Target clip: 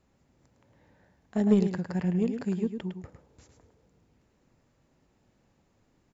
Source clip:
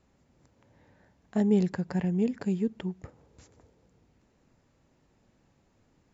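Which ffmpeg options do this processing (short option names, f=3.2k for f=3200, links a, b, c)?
-af "aecho=1:1:107:0.447,aeval=exprs='0.237*(cos(1*acos(clip(val(0)/0.237,-1,1)))-cos(1*PI/2))+0.0211*(cos(3*acos(clip(val(0)/0.237,-1,1)))-cos(3*PI/2))':c=same,volume=1dB"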